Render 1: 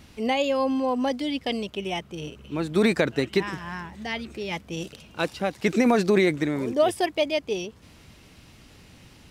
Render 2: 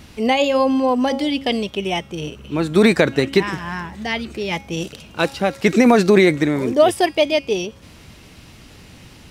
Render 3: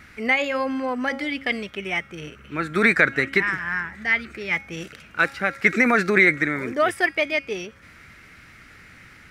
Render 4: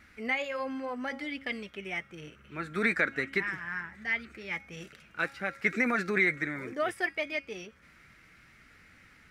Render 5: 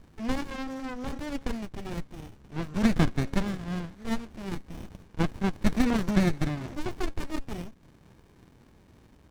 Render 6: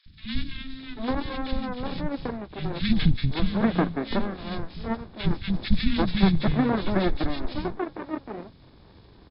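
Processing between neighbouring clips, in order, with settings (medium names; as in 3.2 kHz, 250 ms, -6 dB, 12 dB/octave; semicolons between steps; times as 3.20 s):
de-hum 273.8 Hz, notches 38; trim +7.5 dB
high-order bell 1.7 kHz +15 dB 1.1 oct; trim -9 dB
flange 0.67 Hz, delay 3.4 ms, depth 3 ms, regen -60%; trim -6 dB
resonant low-pass 6 kHz, resonance Q 15; sliding maximum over 65 samples; trim +4 dB
knee-point frequency compression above 3.3 kHz 4:1; three bands offset in time highs, lows, mids 60/790 ms, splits 220/1900 Hz; trim +5.5 dB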